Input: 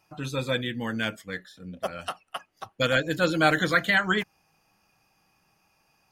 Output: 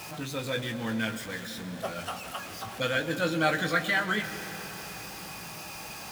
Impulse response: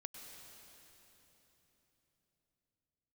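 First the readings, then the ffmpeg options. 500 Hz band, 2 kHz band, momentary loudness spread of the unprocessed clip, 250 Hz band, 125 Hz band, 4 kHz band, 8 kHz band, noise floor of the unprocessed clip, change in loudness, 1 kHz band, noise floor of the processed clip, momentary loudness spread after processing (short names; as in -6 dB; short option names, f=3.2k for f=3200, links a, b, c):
-4.0 dB, -3.5 dB, 17 LU, -3.0 dB, -3.5 dB, -3.0 dB, +4.0 dB, -69 dBFS, -5.5 dB, -3.0 dB, -42 dBFS, 13 LU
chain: -filter_complex "[0:a]aeval=exprs='val(0)+0.5*0.0316*sgn(val(0))':c=same,highpass=45,asplit=2[a][b];[1:a]atrim=start_sample=2205,adelay=18[c];[b][c]afir=irnorm=-1:irlink=0,volume=-1dB[d];[a][d]amix=inputs=2:normalize=0,volume=-6.5dB"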